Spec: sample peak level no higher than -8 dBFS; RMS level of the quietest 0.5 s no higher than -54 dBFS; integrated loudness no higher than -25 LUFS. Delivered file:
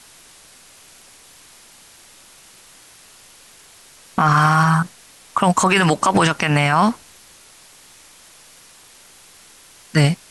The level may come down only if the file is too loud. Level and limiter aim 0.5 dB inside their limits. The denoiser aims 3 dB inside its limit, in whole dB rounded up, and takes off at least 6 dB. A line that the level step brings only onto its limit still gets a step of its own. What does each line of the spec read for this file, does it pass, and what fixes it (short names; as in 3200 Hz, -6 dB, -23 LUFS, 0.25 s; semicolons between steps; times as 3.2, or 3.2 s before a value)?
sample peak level -5.0 dBFS: fail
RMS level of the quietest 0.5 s -47 dBFS: fail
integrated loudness -17.0 LUFS: fail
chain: gain -8.5 dB